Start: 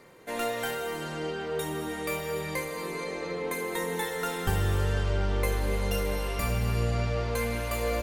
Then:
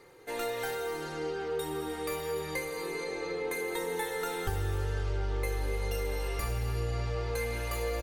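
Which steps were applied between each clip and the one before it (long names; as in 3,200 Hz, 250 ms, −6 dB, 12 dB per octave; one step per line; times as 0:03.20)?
comb filter 2.4 ms, depth 63%
downward compressor 2.5 to 1, threshold −26 dBFS, peak gain reduction 5.5 dB
level −3.5 dB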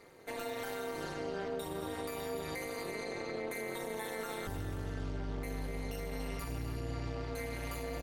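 brickwall limiter −29.5 dBFS, peak gain reduction 10.5 dB
amplitude modulation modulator 210 Hz, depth 75%
level +2 dB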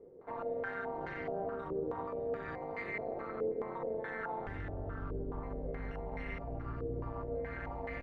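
sub-octave generator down 1 octave, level −5 dB
low-pass on a step sequencer 4.7 Hz 450–2,000 Hz
level −4 dB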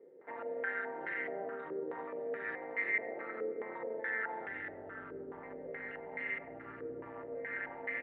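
loudspeaker in its box 370–3,000 Hz, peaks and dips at 450 Hz −3 dB, 700 Hz −7 dB, 1,100 Hz −10 dB, 1,900 Hz +10 dB
on a send at −16.5 dB: convolution reverb RT60 0.60 s, pre-delay 82 ms
on the sum: level +2 dB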